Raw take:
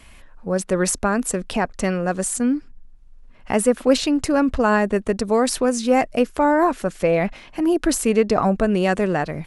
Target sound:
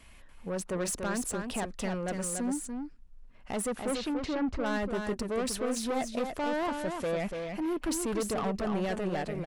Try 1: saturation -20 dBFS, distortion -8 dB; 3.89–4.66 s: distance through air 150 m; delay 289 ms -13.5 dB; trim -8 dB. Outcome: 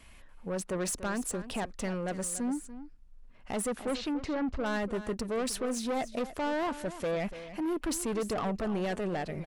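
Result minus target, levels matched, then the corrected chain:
echo-to-direct -8 dB
saturation -20 dBFS, distortion -8 dB; 3.89–4.66 s: distance through air 150 m; delay 289 ms -5.5 dB; trim -8 dB

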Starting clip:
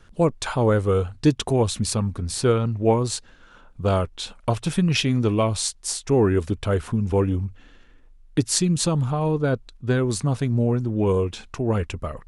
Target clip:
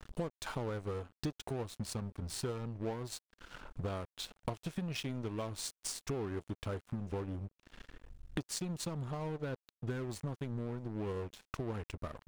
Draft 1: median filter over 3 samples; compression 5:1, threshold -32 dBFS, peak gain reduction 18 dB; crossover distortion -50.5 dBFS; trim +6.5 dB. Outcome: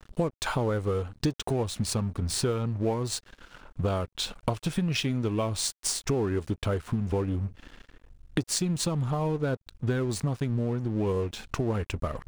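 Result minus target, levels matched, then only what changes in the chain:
compression: peak gain reduction -9 dB
change: compression 5:1, threshold -43.5 dBFS, peak gain reduction 27 dB

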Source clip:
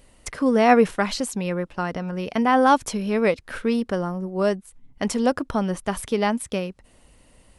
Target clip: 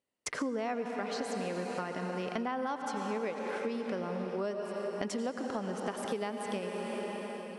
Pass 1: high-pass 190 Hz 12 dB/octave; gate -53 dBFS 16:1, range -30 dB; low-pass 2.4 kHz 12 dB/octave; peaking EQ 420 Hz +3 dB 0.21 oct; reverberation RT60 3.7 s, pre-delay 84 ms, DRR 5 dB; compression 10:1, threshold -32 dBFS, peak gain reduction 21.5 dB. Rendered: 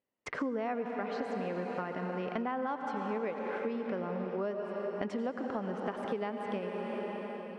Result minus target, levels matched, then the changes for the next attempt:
8 kHz band -17.0 dB
change: low-pass 7.8 kHz 12 dB/octave

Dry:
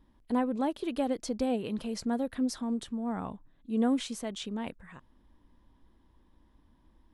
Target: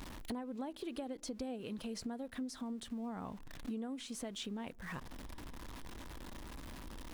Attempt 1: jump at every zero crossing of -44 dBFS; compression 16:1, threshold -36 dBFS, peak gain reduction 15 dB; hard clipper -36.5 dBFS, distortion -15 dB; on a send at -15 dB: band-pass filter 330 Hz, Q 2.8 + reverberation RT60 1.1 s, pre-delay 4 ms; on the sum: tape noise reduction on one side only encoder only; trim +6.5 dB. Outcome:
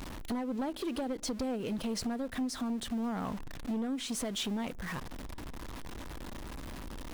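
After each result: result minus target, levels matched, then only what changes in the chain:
compression: peak gain reduction -9 dB; jump at every zero crossing: distortion +8 dB
change: compression 16:1, threshold -45.5 dBFS, peak gain reduction 24 dB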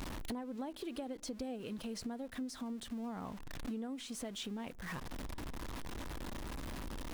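jump at every zero crossing: distortion +8 dB
change: jump at every zero crossing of -52 dBFS

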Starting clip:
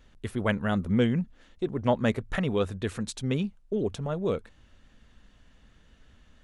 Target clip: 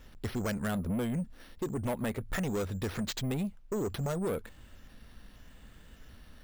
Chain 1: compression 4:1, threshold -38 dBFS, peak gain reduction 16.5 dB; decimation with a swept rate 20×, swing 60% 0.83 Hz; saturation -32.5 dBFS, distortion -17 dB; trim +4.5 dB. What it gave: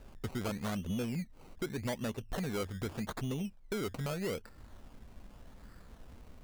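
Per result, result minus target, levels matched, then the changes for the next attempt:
decimation with a swept rate: distortion +10 dB; compression: peak gain reduction +7 dB
change: decimation with a swept rate 5×, swing 60% 0.83 Hz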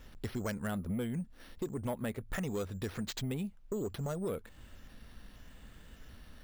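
compression: peak gain reduction +7 dB
change: compression 4:1, threshold -29 dBFS, peak gain reduction 9.5 dB

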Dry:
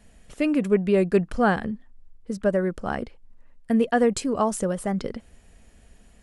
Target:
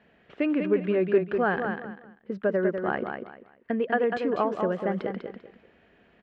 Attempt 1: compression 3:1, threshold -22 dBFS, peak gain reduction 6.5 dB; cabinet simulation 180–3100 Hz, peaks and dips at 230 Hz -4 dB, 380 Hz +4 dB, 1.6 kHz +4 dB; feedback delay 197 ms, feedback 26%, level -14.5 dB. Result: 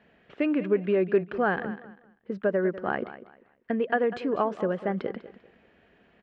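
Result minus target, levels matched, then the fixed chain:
echo-to-direct -8.5 dB
compression 3:1, threshold -22 dBFS, peak gain reduction 6.5 dB; cabinet simulation 180–3100 Hz, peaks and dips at 230 Hz -4 dB, 380 Hz +4 dB, 1.6 kHz +4 dB; feedback delay 197 ms, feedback 26%, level -6 dB

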